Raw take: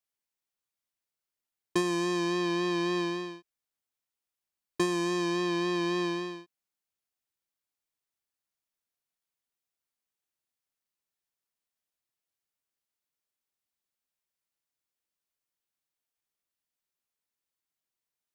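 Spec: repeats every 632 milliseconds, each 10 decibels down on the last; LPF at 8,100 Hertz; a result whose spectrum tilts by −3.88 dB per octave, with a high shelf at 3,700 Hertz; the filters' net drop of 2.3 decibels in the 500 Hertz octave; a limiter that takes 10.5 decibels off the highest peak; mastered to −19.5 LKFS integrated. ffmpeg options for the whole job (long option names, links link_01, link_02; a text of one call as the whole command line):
ffmpeg -i in.wav -af "lowpass=8100,equalizer=frequency=500:width_type=o:gain=-4.5,highshelf=frequency=3700:gain=-4,alimiter=level_in=6.5dB:limit=-24dB:level=0:latency=1,volume=-6.5dB,aecho=1:1:632|1264|1896|2528:0.316|0.101|0.0324|0.0104,volume=17.5dB" out.wav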